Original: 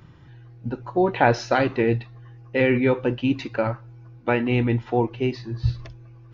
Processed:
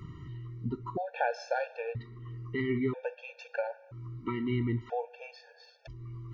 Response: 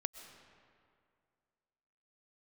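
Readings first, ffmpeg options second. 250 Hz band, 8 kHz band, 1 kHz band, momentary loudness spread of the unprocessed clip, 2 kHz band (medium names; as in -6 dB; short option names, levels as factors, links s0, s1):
-12.0 dB, no reading, -11.0 dB, 14 LU, -12.0 dB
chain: -filter_complex "[0:a]acompressor=threshold=0.00708:ratio=2,asplit=2[s0][s1];[1:a]atrim=start_sample=2205,lowpass=3500[s2];[s1][s2]afir=irnorm=-1:irlink=0,volume=0.299[s3];[s0][s3]amix=inputs=2:normalize=0,afftfilt=real='re*gt(sin(2*PI*0.51*pts/sr)*(1-2*mod(floor(b*sr/1024/460),2)),0)':imag='im*gt(sin(2*PI*0.51*pts/sr)*(1-2*mod(floor(b*sr/1024/460),2)),0)':win_size=1024:overlap=0.75,volume=1.33"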